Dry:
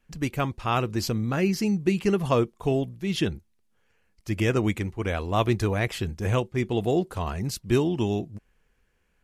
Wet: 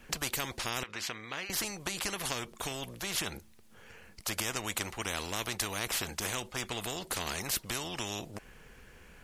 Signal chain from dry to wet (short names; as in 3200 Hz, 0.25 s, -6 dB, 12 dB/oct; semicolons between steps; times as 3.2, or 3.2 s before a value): compressor, threshold -25 dBFS, peak gain reduction 8.5 dB; 0.83–1.5 band-pass 2000 Hz, Q 2.1; spectral compressor 4:1